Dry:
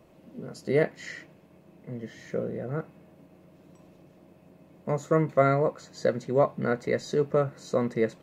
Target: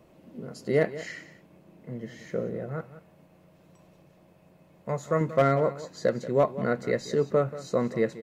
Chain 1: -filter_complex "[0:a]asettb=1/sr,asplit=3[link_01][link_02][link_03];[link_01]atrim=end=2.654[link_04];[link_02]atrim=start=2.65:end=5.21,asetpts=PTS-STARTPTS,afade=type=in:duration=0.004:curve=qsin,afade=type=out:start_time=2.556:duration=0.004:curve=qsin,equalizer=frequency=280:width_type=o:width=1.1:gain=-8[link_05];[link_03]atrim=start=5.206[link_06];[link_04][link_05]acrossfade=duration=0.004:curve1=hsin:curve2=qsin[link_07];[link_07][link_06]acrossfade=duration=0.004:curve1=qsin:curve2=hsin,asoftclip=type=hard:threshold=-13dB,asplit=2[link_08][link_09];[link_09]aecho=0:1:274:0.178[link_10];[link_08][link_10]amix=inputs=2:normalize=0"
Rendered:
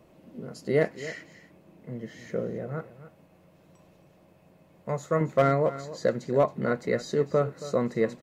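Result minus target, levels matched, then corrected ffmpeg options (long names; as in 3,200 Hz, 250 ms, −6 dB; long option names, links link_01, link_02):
echo 91 ms late
-filter_complex "[0:a]asettb=1/sr,asplit=3[link_01][link_02][link_03];[link_01]atrim=end=2.654[link_04];[link_02]atrim=start=2.65:end=5.21,asetpts=PTS-STARTPTS,afade=type=in:duration=0.004:curve=qsin,afade=type=out:start_time=2.556:duration=0.004:curve=qsin,equalizer=frequency=280:width_type=o:width=1.1:gain=-8[link_05];[link_03]atrim=start=5.206[link_06];[link_04][link_05]acrossfade=duration=0.004:curve1=hsin:curve2=qsin[link_07];[link_07][link_06]acrossfade=duration=0.004:curve1=qsin:curve2=hsin,asoftclip=type=hard:threshold=-13dB,asplit=2[link_08][link_09];[link_09]aecho=0:1:183:0.178[link_10];[link_08][link_10]amix=inputs=2:normalize=0"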